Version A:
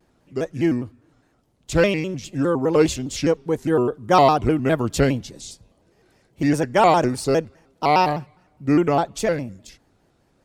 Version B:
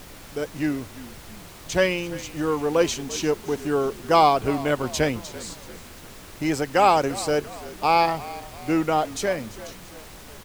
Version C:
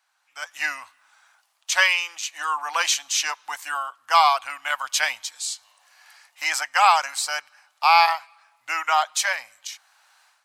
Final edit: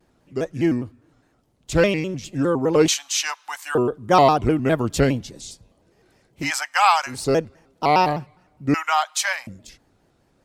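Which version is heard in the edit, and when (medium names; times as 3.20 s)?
A
2.88–3.75 s: from C
6.43–7.14 s: from C, crossfade 0.16 s
8.74–9.47 s: from C
not used: B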